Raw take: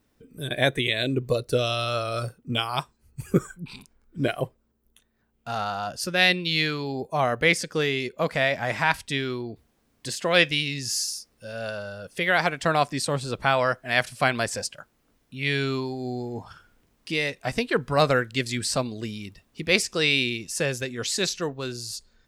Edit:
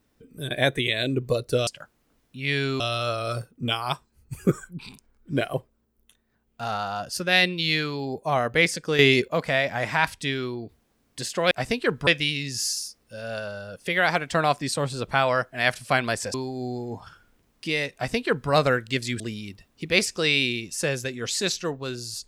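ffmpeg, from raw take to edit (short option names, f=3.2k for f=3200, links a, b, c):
-filter_complex "[0:a]asplit=9[a][b][c][d][e][f][g][h][i];[a]atrim=end=1.672[j];[b]atrim=start=14.648:end=15.782[k];[c]atrim=start=1.668:end=7.862[l];[d]atrim=start=7.858:end=8.152,asetpts=PTS-STARTPTS,volume=9.5dB[m];[e]atrim=start=8.148:end=10.382[n];[f]atrim=start=17.378:end=17.942[o];[g]atrim=start=10.378:end=14.652[p];[h]atrim=start=15.778:end=18.642[q];[i]atrim=start=18.968[r];[j][k]acrossfade=d=0.004:c1=hsin:c2=hsin[s];[s][l]acrossfade=d=0.004:c1=hsin:c2=hsin[t];[t][m]acrossfade=d=0.004:c1=hsin:c2=hsin[u];[u][n]acrossfade=d=0.004:c1=hsin:c2=hsin[v];[v][o]acrossfade=d=0.004:c1=hsin:c2=hsin[w];[w][p]acrossfade=d=0.004:c1=hsin:c2=hsin[x];[x][q]acrossfade=d=0.004:c1=hsin:c2=hsin[y];[y][r]acrossfade=d=0.004:c1=hsin:c2=hsin"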